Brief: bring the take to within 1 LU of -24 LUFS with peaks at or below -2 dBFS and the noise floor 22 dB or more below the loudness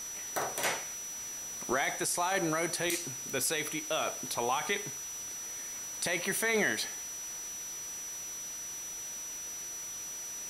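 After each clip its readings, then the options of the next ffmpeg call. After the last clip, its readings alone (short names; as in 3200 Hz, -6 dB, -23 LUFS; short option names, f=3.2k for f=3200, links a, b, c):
steady tone 5900 Hz; tone level -39 dBFS; noise floor -41 dBFS; noise floor target -56 dBFS; loudness -33.5 LUFS; peak -17.5 dBFS; loudness target -24.0 LUFS
-> -af "bandreject=f=5.9k:w=30"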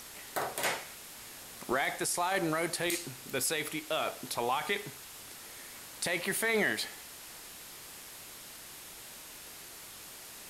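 steady tone none; noise floor -49 dBFS; noise floor target -55 dBFS
-> -af "afftdn=nr=6:nf=-49"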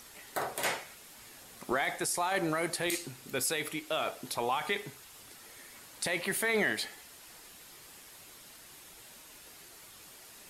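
noise floor -53 dBFS; noise floor target -55 dBFS
-> -af "afftdn=nr=6:nf=-53"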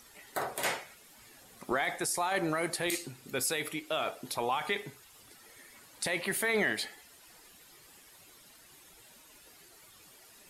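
noise floor -58 dBFS; loudness -32.5 LUFS; peak -18.5 dBFS; loudness target -24.0 LUFS
-> -af "volume=8.5dB"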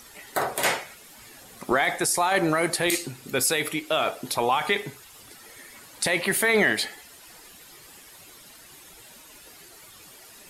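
loudness -24.0 LUFS; peak -10.0 dBFS; noise floor -49 dBFS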